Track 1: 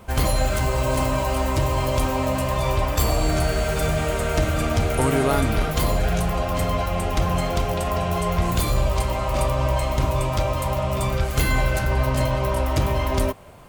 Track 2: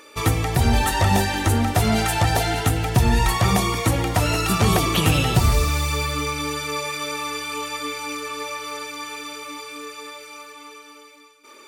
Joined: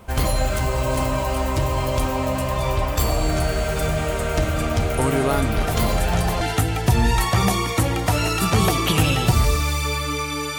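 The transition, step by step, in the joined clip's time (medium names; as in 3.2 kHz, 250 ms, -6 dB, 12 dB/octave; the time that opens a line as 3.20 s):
track 1
5.60 s: add track 2 from 1.68 s 0.81 s -7 dB
6.41 s: go over to track 2 from 2.49 s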